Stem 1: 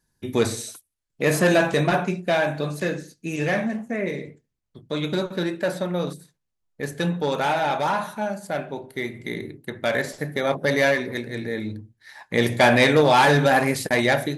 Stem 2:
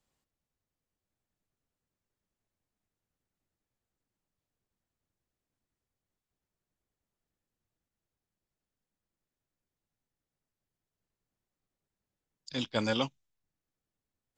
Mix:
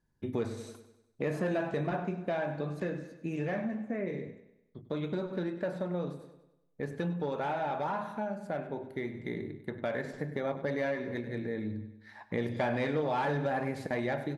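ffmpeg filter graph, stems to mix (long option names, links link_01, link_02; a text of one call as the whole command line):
ffmpeg -i stem1.wav -i stem2.wav -filter_complex "[0:a]lowpass=frequency=1100:poles=1,volume=-2.5dB,asplit=2[link_01][link_02];[link_02]volume=-15dB[link_03];[1:a]volume=-15.5dB[link_04];[link_03]aecho=0:1:98|196|294|392|490|588|686:1|0.47|0.221|0.104|0.0488|0.0229|0.0108[link_05];[link_01][link_04][link_05]amix=inputs=3:normalize=0,acompressor=threshold=-33dB:ratio=2.5" out.wav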